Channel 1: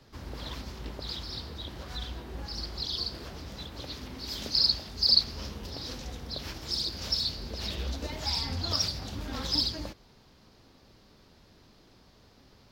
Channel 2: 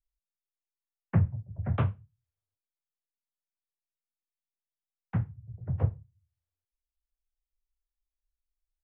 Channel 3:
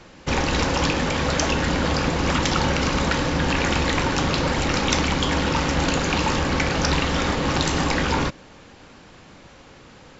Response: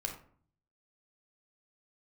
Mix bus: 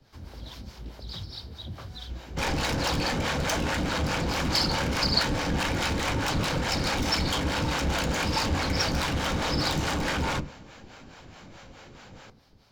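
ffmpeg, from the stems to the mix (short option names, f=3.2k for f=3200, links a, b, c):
-filter_complex "[0:a]acrossover=split=500|3000[a][b][c];[b]acompressor=threshold=-52dB:ratio=2[d];[a][d][c]amix=inputs=3:normalize=0,volume=-3.5dB,asplit=2[e][f];[f]volume=-3dB[g];[1:a]volume=-11dB[h];[2:a]volume=23.5dB,asoftclip=hard,volume=-23.5dB,adelay=2100,volume=-2dB,asplit=2[i][j];[j]volume=-5dB[k];[3:a]atrim=start_sample=2205[l];[g][k]amix=inputs=2:normalize=0[m];[m][l]afir=irnorm=-1:irlink=0[n];[e][h][i][n]amix=inputs=4:normalize=0,acrossover=split=490[o][p];[o]aeval=exprs='val(0)*(1-0.7/2+0.7/2*cos(2*PI*4.7*n/s))':c=same[q];[p]aeval=exprs='val(0)*(1-0.7/2-0.7/2*cos(2*PI*4.7*n/s))':c=same[r];[q][r]amix=inputs=2:normalize=0"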